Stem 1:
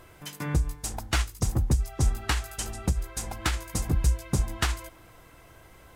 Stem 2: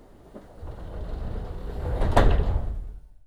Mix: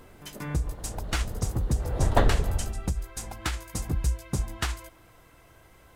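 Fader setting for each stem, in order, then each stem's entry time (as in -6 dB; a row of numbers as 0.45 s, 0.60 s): -3.0 dB, -2.5 dB; 0.00 s, 0.00 s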